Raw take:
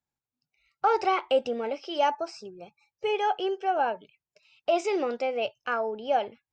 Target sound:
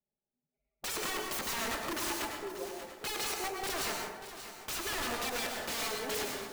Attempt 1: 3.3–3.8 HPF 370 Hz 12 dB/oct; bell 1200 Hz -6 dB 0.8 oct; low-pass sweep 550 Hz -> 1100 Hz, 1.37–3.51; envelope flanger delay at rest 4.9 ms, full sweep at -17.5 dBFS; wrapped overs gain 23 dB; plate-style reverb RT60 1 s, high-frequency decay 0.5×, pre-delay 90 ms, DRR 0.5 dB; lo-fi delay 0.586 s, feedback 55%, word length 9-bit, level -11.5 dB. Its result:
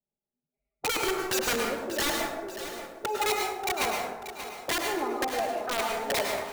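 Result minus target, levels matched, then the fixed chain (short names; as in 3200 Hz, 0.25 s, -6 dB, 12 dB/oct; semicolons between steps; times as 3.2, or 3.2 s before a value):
wrapped overs: distortion -15 dB
3.3–3.8 HPF 370 Hz 12 dB/oct; bell 1200 Hz -6 dB 0.8 oct; low-pass sweep 550 Hz -> 1100 Hz, 1.37–3.51; envelope flanger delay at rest 4.9 ms, full sweep at -17.5 dBFS; wrapped overs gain 32 dB; plate-style reverb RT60 1 s, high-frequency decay 0.5×, pre-delay 90 ms, DRR 0.5 dB; lo-fi delay 0.586 s, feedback 55%, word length 9-bit, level -11.5 dB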